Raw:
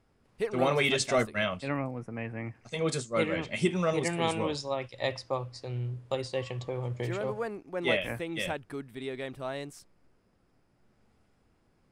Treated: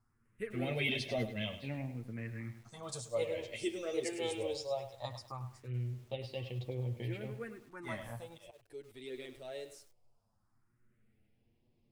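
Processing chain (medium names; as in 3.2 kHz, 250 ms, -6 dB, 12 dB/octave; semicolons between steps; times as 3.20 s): phase shifter stages 4, 0.19 Hz, lowest notch 170–1400 Hz; 8.28–8.88 s: slow attack 352 ms; flange 1.2 Hz, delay 8.1 ms, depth 1.2 ms, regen +6%; bit-crushed delay 102 ms, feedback 35%, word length 9-bit, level -11 dB; trim -3 dB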